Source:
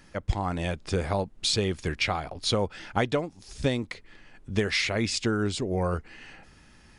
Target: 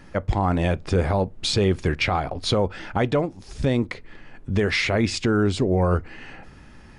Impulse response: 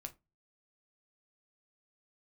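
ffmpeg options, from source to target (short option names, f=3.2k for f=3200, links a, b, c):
-filter_complex "[0:a]highshelf=f=2.7k:g=-11,alimiter=limit=-21dB:level=0:latency=1:release=25,asplit=2[a][b];[1:a]atrim=start_sample=2205[c];[b][c]afir=irnorm=-1:irlink=0,volume=-6.5dB[d];[a][d]amix=inputs=2:normalize=0,volume=7dB"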